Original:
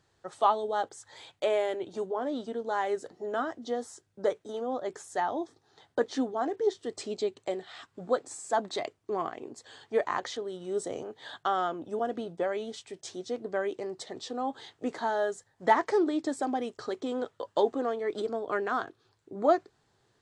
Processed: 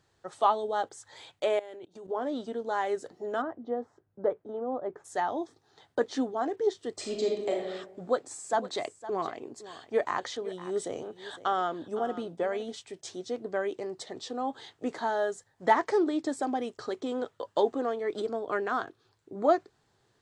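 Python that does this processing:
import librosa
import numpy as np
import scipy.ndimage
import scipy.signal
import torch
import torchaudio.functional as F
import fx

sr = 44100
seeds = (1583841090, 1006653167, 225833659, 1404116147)

y = fx.level_steps(x, sr, step_db=22, at=(1.59, 2.1))
y = fx.lowpass(y, sr, hz=1200.0, slope=12, at=(3.41, 5.04), fade=0.02)
y = fx.reverb_throw(y, sr, start_s=6.96, length_s=0.67, rt60_s=0.92, drr_db=-0.5)
y = fx.echo_single(y, sr, ms=510, db=-15.0, at=(8.51, 12.72), fade=0.02)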